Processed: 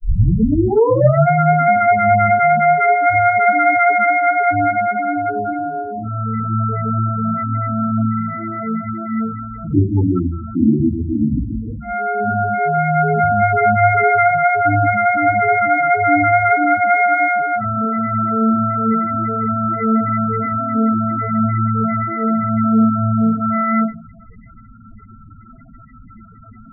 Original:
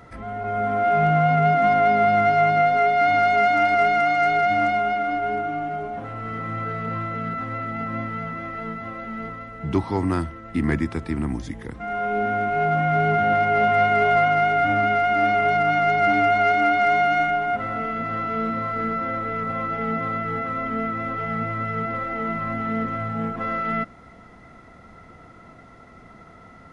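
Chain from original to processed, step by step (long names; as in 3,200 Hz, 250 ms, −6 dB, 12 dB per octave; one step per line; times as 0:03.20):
turntable start at the beginning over 1.23 s
convolution reverb RT60 0.35 s, pre-delay 3 ms, DRR −5.5 dB
spectral peaks only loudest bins 8
level −1 dB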